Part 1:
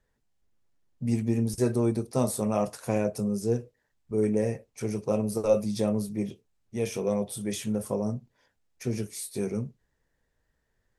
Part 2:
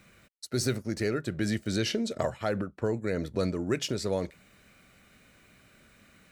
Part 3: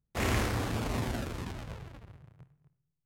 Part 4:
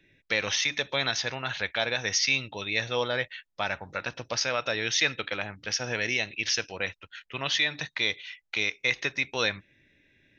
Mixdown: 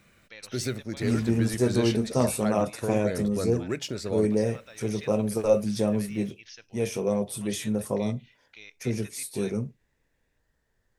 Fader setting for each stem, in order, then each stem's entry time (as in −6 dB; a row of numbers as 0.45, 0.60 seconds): +1.5, −2.0, −16.5, −20.0 decibels; 0.00, 0.00, 0.85, 0.00 seconds